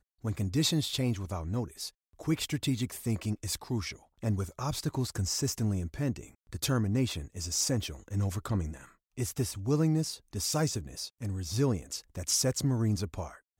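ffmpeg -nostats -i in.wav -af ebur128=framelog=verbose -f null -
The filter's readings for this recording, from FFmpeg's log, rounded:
Integrated loudness:
  I:         -32.0 LUFS
  Threshold: -42.1 LUFS
Loudness range:
  LRA:         2.5 LU
  Threshold: -52.4 LUFS
  LRA low:   -33.7 LUFS
  LRA high:  -31.1 LUFS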